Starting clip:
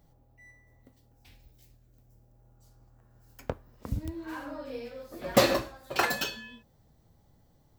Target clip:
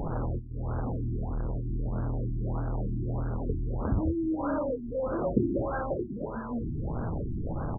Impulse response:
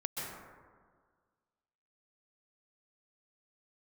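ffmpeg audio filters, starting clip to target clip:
-filter_complex "[0:a]aeval=exprs='val(0)+0.5*0.0562*sgn(val(0))':c=same,asplit=2[a][b];[b]adelay=25,volume=-11.5dB[c];[a][c]amix=inputs=2:normalize=0,afftfilt=real='re*lt(b*sr/1024,370*pow(1700/370,0.5+0.5*sin(2*PI*1.6*pts/sr)))':imag='im*lt(b*sr/1024,370*pow(1700/370,0.5+0.5*sin(2*PI*1.6*pts/sr)))':win_size=1024:overlap=0.75"

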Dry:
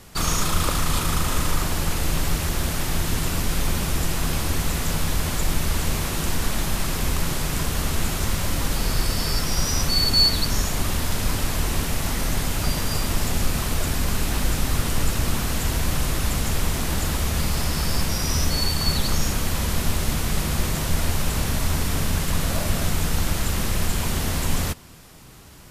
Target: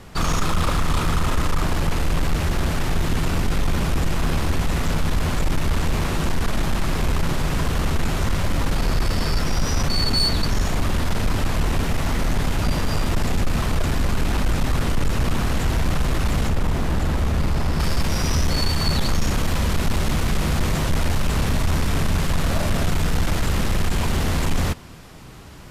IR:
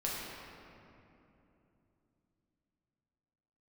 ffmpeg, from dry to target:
-af "asetnsamples=n=441:p=0,asendcmd='16.49 lowpass f 1300;17.8 lowpass f 3400',lowpass=f=2.4k:p=1,asoftclip=type=tanh:threshold=-18.5dB,volume=5.5dB"

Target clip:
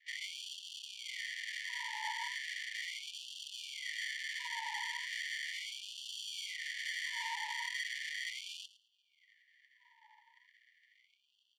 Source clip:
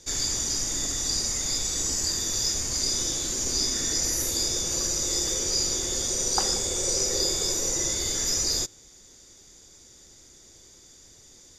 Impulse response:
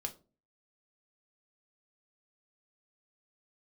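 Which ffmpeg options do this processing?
-filter_complex "[0:a]asettb=1/sr,asplit=3[a][b][c];[a]atrim=end=6.034[d];[b]atrim=start=6.03:end=6.56,asetpts=PTS-STARTPTS,afade=t=in:d=0.004:c=qsin,afade=t=out:st=0.526:d=0.004:c=qsin,highshelf=f=7.2k:g=5.5[e];[c]atrim=start=6.556[f];[d][e]acrossfade=d=0.004:c1=hsin:c2=qsin[g];[g][f]acrossfade=d=0.004:c1=qsin:c2=hsin,acrusher=samples=34:mix=1:aa=0.000001,asoftclip=type=tanh:threshold=-29.5dB,adynamicsmooth=sensitivity=3.5:basefreq=1.2k,asuperstop=centerf=1300:order=20:qfactor=1.7,aecho=1:1:109|218:0.158|0.0285,afftfilt=real='re*gte(b*sr/1024,850*pow(2600/850,0.5+0.5*sin(2*PI*0.37*pts/sr)))':imag='im*gte(b*sr/1024,850*pow(2600/850,0.5+0.5*sin(2*PI*0.37*pts/sr)))':win_size=1024:overlap=0.75,volume=6dB"

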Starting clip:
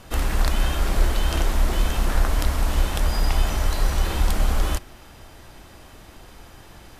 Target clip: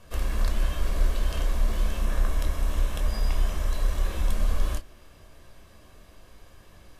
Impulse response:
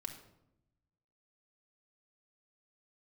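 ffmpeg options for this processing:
-filter_complex "[0:a]asettb=1/sr,asplit=3[a][b][c];[a]atrim=end=2.004[d];[b]atrim=start=2:end=4.33,asetpts=PTS-STARTPTS,afade=t=in:d=0.004:c=qsin,afade=t=out:st=2.326:d=0.004:c=qsin,bandreject=f=4.6k:w=10[e];[c]atrim=start=4.326[f];[d][e]acrossfade=d=0.004:c1=hsin:c2=qsin[g];[g][f]acrossfade=d=0.004:c1=qsin:c2=hsin[h];[1:a]atrim=start_sample=2205,atrim=end_sample=3528,asetrate=88200,aresample=44100[i];[h][i]afir=irnorm=-1:irlink=0"

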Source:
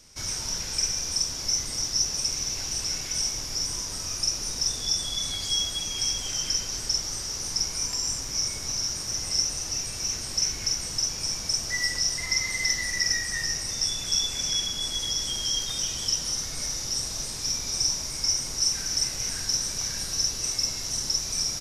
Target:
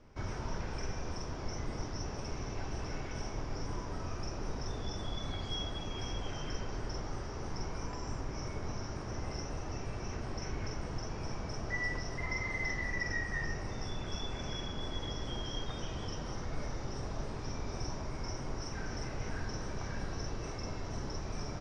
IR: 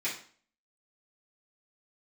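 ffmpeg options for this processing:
-filter_complex "[0:a]lowpass=1.2k,asplit=2[a][b];[1:a]atrim=start_sample=2205,asetrate=57330,aresample=44100[c];[b][c]afir=irnorm=-1:irlink=0,volume=-14.5dB[d];[a][d]amix=inputs=2:normalize=0,volume=2.5dB"

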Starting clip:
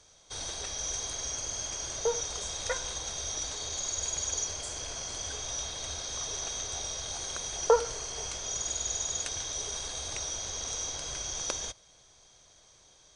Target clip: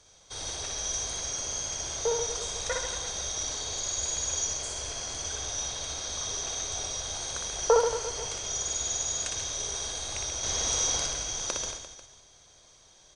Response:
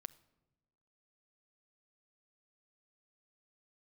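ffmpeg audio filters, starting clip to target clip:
-filter_complex "[0:a]asettb=1/sr,asplit=3[a][b][c];[a]atrim=end=10.434[d];[b]atrim=start=10.43:end=11.07,asetpts=PTS-STARTPTS,afade=t=in:d=0.004:c=qsin,afade=t=out:st=0.636:d=0.004:c=qsin,acontrast=46[e];[c]atrim=start=11.066[f];[d][e]acrossfade=d=0.004:c1=hsin:c2=qsin[g];[g][f]acrossfade=d=0.004:c1=qsin:c2=hsin,aecho=1:1:60|135|228.8|345.9|492.4:0.631|0.398|0.251|0.158|0.1"

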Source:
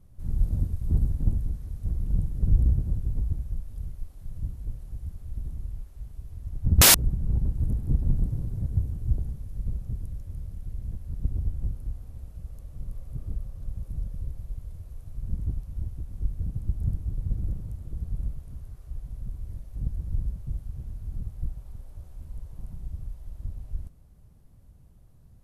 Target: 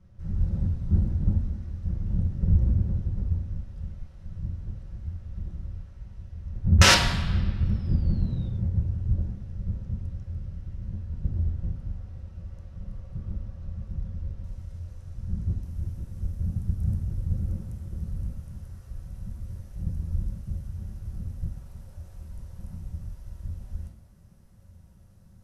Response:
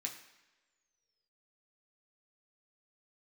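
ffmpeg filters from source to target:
-filter_complex "[0:a]asetnsamples=n=441:p=0,asendcmd='14.44 lowpass f 7100;15.63 lowpass f 12000',lowpass=4k[a];[1:a]atrim=start_sample=2205,asetrate=32634,aresample=44100[b];[a][b]afir=irnorm=-1:irlink=0,volume=3.5dB"

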